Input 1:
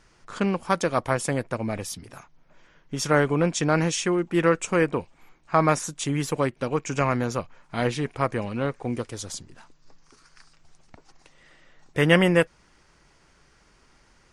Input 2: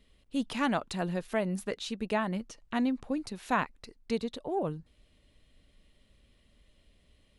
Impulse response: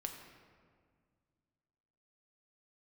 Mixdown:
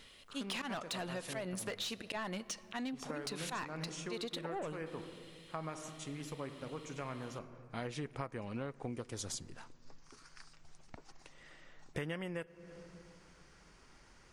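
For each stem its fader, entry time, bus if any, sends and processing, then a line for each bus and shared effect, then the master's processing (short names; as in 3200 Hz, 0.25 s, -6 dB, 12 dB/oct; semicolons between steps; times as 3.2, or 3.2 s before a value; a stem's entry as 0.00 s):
-3.5 dB, 0.00 s, send -16.5 dB, auto duck -21 dB, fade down 0.25 s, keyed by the second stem
-7.0 dB, 0.00 s, send -11.5 dB, high shelf 2400 Hz +6.5 dB; auto swell 0.148 s; overdrive pedal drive 21 dB, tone 6400 Hz, clips at -16.5 dBFS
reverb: on, RT60 1.9 s, pre-delay 5 ms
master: compressor 16:1, threshold -37 dBFS, peak gain reduction 22.5 dB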